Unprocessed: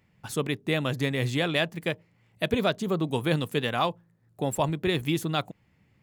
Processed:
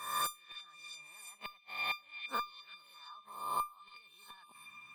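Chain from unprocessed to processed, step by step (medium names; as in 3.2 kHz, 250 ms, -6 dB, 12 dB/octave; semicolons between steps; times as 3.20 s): reverse spectral sustain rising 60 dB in 0.77 s; frequency weighting A; in parallel at -3 dB: compressor with a negative ratio -30 dBFS, ratio -0.5; on the sum: inverted gate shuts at -15 dBFS, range -36 dB; feedback comb 990 Hz, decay 0.25 s, mix 100%; small resonant body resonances 820/1400 Hz, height 17 dB, ringing for 35 ms; tape speed +22%; on a send: repeats whose band climbs or falls 343 ms, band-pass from 3 kHz, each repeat 0.7 oct, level -10.5 dB; on the sum: three bands compressed up and down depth 40%; trim +17.5 dB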